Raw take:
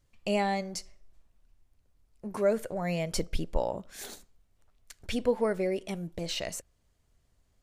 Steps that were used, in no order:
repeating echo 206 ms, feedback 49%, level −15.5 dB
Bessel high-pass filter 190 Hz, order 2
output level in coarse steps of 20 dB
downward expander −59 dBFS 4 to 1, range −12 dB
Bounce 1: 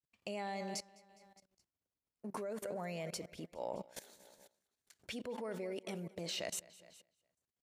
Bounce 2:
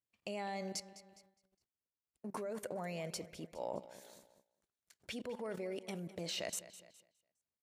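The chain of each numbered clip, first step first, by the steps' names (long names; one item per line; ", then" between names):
repeating echo, then downward expander, then output level in coarse steps, then Bessel high-pass filter
output level in coarse steps, then repeating echo, then downward expander, then Bessel high-pass filter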